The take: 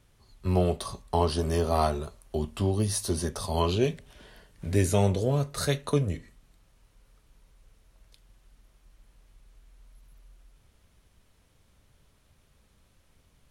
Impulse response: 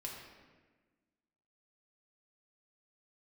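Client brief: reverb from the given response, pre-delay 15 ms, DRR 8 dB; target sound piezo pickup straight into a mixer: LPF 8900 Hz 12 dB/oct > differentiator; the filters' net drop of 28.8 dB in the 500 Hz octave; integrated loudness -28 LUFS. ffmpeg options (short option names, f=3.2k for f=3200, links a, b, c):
-filter_complex "[0:a]equalizer=f=500:t=o:g=-7.5,asplit=2[a][b];[1:a]atrim=start_sample=2205,adelay=15[c];[b][c]afir=irnorm=-1:irlink=0,volume=-6.5dB[d];[a][d]amix=inputs=2:normalize=0,lowpass=8.9k,aderivative,volume=12.5dB"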